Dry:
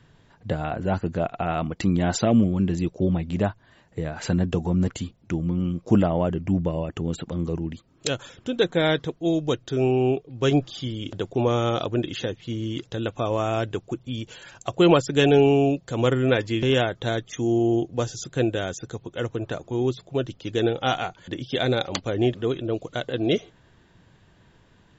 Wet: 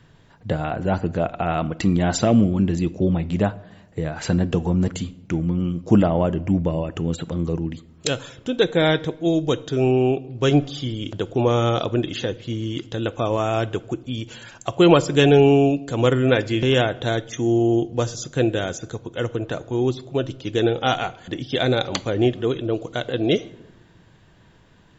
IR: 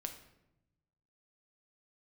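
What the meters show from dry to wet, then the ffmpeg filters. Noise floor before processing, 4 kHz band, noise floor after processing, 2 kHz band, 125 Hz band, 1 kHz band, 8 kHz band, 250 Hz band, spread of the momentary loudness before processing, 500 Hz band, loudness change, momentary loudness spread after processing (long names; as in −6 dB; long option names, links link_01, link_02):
−58 dBFS, +3.0 dB, −52 dBFS, +3.0 dB, +3.0 dB, +3.0 dB, can't be measured, +3.0 dB, 11 LU, +3.0 dB, +3.0 dB, 11 LU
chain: -filter_complex "[0:a]asplit=2[link_01][link_02];[1:a]atrim=start_sample=2205[link_03];[link_02][link_03]afir=irnorm=-1:irlink=0,volume=-5dB[link_04];[link_01][link_04]amix=inputs=2:normalize=0"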